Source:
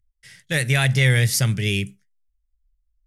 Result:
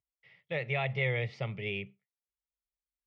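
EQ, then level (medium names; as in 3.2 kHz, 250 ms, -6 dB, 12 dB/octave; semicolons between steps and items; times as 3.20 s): distance through air 54 m; cabinet simulation 210–2600 Hz, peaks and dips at 250 Hz +5 dB, 1.4 kHz +8 dB, 2.2 kHz +4 dB; static phaser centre 640 Hz, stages 4; -4.5 dB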